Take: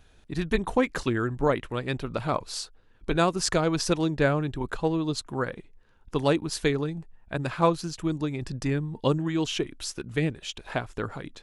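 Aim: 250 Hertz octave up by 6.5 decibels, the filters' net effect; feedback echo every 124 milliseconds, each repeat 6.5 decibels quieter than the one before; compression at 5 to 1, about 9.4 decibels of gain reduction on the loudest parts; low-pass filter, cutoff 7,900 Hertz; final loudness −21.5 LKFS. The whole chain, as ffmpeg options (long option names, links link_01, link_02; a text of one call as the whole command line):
ffmpeg -i in.wav -af "lowpass=7900,equalizer=frequency=250:width_type=o:gain=9,acompressor=threshold=-24dB:ratio=5,aecho=1:1:124|248|372|496|620|744:0.473|0.222|0.105|0.0491|0.0231|0.0109,volume=7.5dB" out.wav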